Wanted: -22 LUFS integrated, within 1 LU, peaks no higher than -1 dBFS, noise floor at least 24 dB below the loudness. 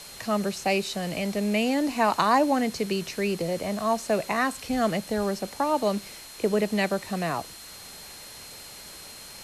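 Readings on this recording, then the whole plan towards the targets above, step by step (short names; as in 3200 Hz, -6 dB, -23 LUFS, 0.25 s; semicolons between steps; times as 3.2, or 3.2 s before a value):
steady tone 4200 Hz; tone level -47 dBFS; noise floor -44 dBFS; noise floor target -51 dBFS; loudness -26.5 LUFS; peak -9.0 dBFS; loudness target -22.0 LUFS
-> notch 4200 Hz, Q 30; denoiser 7 dB, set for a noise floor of -44 dBFS; gain +4.5 dB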